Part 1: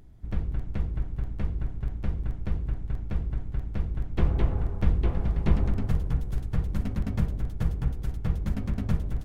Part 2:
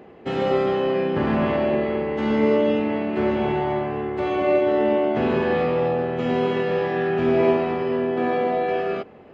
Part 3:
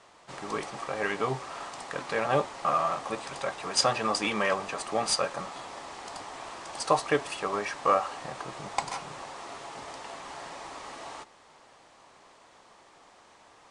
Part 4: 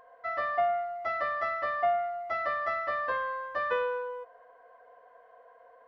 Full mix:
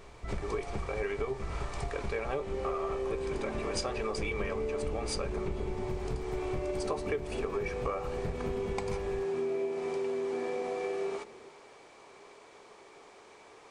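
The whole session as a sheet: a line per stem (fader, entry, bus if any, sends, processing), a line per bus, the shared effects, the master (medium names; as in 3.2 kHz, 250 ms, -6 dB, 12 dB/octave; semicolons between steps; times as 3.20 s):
0.0 dB, 0.00 s, no send, random flutter of the level, depth 55%
-12.5 dB, 2.15 s, no send, none
-0.5 dB, 0.00 s, no send, none
-15.5 dB, 0.00 s, no send, none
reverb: none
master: small resonant body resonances 410/2300 Hz, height 13 dB, ringing for 35 ms; compression 6:1, threshold -31 dBFS, peak gain reduction 18 dB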